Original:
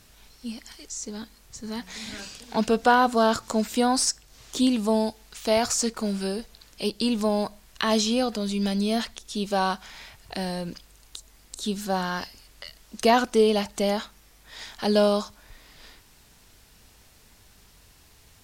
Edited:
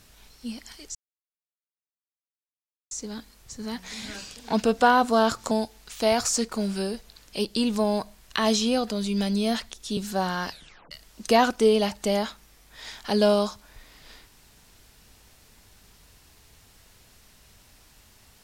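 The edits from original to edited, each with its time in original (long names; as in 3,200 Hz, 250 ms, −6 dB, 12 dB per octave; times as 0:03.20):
0:00.95: splice in silence 1.96 s
0:03.55–0:04.96: remove
0:09.42–0:11.71: remove
0:12.24: tape stop 0.41 s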